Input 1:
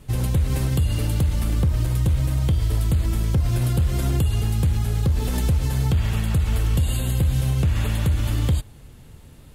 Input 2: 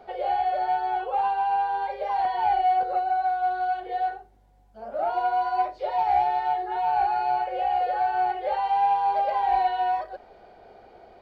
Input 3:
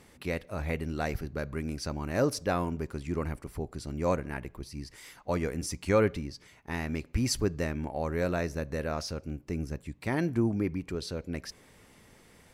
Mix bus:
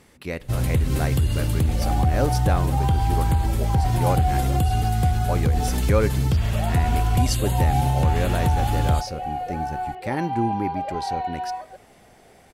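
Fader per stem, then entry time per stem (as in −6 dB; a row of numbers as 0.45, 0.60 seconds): −0.5, −5.0, +2.5 decibels; 0.40, 1.60, 0.00 seconds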